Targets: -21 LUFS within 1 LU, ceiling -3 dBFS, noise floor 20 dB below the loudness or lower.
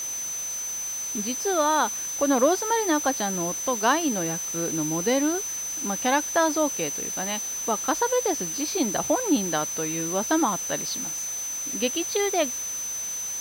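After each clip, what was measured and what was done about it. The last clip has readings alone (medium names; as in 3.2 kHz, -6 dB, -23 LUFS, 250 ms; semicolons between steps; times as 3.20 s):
steady tone 6.1 kHz; tone level -29 dBFS; noise floor -32 dBFS; noise floor target -45 dBFS; loudness -25.0 LUFS; peak level -9.0 dBFS; loudness target -21.0 LUFS
-> band-stop 6.1 kHz, Q 30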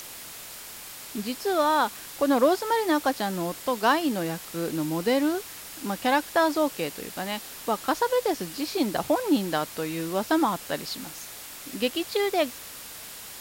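steady tone not found; noise floor -42 dBFS; noise floor target -47 dBFS
-> noise reduction 6 dB, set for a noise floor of -42 dBFS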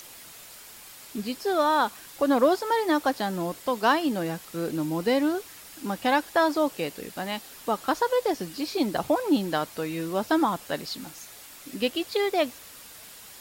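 noise floor -47 dBFS; loudness -26.5 LUFS; peak level -9.5 dBFS; loudness target -21.0 LUFS
-> trim +5.5 dB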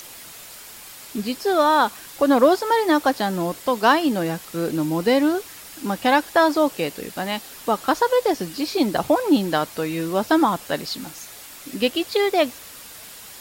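loudness -21.0 LUFS; peak level -4.0 dBFS; noise floor -41 dBFS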